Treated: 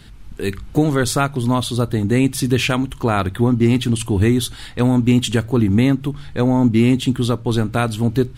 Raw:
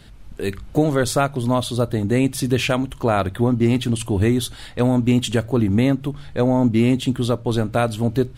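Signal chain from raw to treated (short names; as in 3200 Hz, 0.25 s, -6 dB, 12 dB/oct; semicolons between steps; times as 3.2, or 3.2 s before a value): bell 590 Hz -8 dB 0.56 oct; gain +3 dB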